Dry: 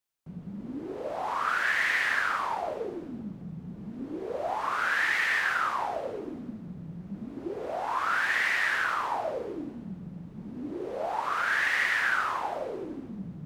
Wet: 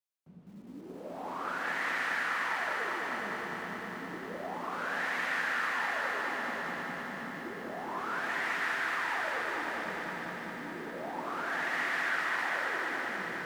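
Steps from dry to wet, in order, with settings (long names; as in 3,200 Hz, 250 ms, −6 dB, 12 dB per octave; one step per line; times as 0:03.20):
high-pass filter 74 Hz
parametric band 110 Hz −7 dB 1.2 octaves
on a send: feedback delay with all-pass diffusion 517 ms, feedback 57%, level −4 dB
on the sum: feedback echo at a low word length 202 ms, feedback 80%, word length 9 bits, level −4 dB
level −9 dB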